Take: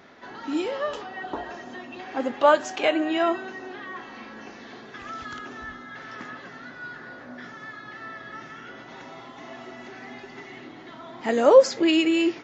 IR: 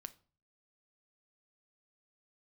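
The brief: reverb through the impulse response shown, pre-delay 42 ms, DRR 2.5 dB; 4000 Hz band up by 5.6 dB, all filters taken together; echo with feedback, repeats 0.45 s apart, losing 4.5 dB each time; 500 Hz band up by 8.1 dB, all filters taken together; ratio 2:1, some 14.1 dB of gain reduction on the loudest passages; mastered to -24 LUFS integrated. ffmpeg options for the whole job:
-filter_complex "[0:a]equalizer=f=500:t=o:g=9,equalizer=f=4k:t=o:g=8.5,acompressor=threshold=-26dB:ratio=2,aecho=1:1:450|900|1350|1800|2250|2700|3150|3600|4050:0.596|0.357|0.214|0.129|0.0772|0.0463|0.0278|0.0167|0.01,asplit=2[a][b];[1:a]atrim=start_sample=2205,adelay=42[c];[b][c]afir=irnorm=-1:irlink=0,volume=3dB[d];[a][d]amix=inputs=2:normalize=0,volume=2dB"

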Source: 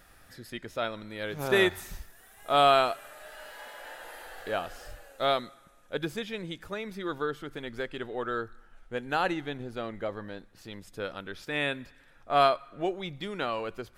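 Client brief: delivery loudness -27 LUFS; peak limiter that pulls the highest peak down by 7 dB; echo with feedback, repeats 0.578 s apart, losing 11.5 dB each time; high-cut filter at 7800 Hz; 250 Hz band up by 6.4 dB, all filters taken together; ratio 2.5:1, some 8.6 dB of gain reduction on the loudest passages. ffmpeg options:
-af "lowpass=7.8k,equalizer=f=250:t=o:g=9,acompressor=threshold=-29dB:ratio=2.5,alimiter=limit=-23.5dB:level=0:latency=1,aecho=1:1:578|1156|1734:0.266|0.0718|0.0194,volume=9dB"

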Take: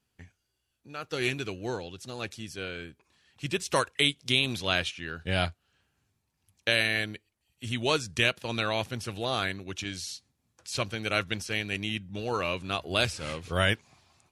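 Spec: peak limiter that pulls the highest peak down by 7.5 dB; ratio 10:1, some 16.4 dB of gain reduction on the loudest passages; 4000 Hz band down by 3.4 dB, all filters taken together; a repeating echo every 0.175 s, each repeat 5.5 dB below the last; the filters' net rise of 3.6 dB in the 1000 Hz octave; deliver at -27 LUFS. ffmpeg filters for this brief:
-af "equalizer=f=1k:t=o:g=5,equalizer=f=4k:t=o:g=-5,acompressor=threshold=-36dB:ratio=10,alimiter=level_in=3.5dB:limit=-24dB:level=0:latency=1,volume=-3.5dB,aecho=1:1:175|350|525|700|875|1050|1225:0.531|0.281|0.149|0.079|0.0419|0.0222|0.0118,volume=14dB"

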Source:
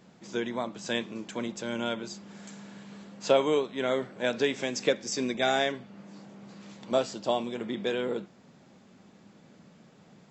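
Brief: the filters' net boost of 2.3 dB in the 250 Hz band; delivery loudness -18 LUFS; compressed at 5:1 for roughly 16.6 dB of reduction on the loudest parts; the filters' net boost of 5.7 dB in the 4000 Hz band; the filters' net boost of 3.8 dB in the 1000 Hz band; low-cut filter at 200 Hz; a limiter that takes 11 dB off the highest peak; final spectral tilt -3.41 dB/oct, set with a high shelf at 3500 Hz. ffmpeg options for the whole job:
-af "highpass=200,equalizer=f=250:t=o:g=4,equalizer=f=1k:t=o:g=5,highshelf=f=3.5k:g=-3,equalizer=f=4k:t=o:g=8.5,acompressor=threshold=-34dB:ratio=5,volume=24dB,alimiter=limit=-7dB:level=0:latency=1"

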